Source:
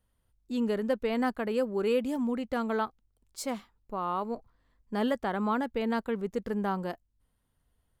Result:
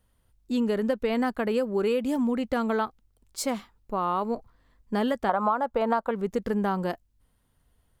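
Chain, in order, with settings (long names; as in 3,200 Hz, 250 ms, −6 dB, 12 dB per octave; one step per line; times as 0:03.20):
0:05.29–0:06.11: flat-topped bell 860 Hz +13.5 dB
downward compressor 8 to 1, threshold −28 dBFS, peak gain reduction 15.5 dB
level +6.5 dB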